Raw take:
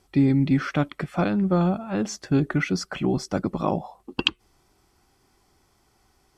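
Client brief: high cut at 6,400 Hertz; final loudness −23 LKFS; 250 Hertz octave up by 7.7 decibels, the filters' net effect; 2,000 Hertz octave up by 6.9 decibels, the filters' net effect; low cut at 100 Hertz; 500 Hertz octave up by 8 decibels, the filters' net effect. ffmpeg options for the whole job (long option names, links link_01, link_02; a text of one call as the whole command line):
ffmpeg -i in.wav -af "highpass=100,lowpass=6400,equalizer=frequency=250:width_type=o:gain=7.5,equalizer=frequency=500:width_type=o:gain=7.5,equalizer=frequency=2000:width_type=o:gain=8.5,volume=-5dB" out.wav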